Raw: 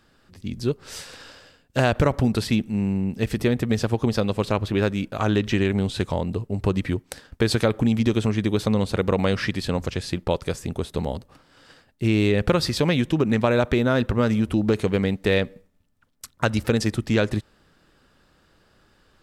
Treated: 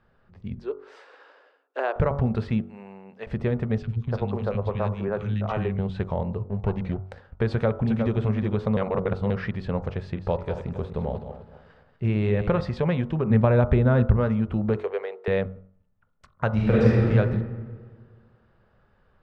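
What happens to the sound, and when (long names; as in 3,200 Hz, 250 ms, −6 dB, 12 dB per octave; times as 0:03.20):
0:00.59–0:01.96: Chebyshev high-pass with heavy ripple 280 Hz, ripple 3 dB
0:02.64–0:03.27: high-pass filter 600 Hz
0:03.78–0:05.79: three-band delay without the direct sound highs, lows, mids 40/290 ms, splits 230/1,900 Hz
0:06.46–0:07.00: lower of the sound and its delayed copy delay 0.32 ms
0:07.51–0:08.18: delay throw 360 ms, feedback 15%, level −6.5 dB
0:08.77–0:09.30: reverse
0:10.03–0:12.61: feedback delay that plays each chunk backwards 129 ms, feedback 52%, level −9 dB
0:13.30–0:14.17: low-shelf EQ 230 Hz +9.5 dB
0:14.77–0:15.28: elliptic high-pass filter 390 Hz
0:16.48–0:17.09: thrown reverb, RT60 1.8 s, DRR −7 dB
whole clip: Bessel low-pass filter 1,200 Hz, order 2; parametric band 300 Hz −14.5 dB 0.39 octaves; hum removal 47.09 Hz, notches 31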